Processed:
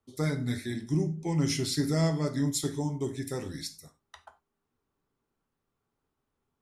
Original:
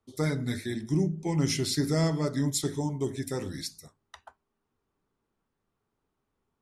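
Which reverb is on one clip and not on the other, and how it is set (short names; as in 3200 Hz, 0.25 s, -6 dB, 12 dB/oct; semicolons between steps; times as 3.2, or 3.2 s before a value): non-linear reverb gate 0.12 s falling, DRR 9 dB; gain -2 dB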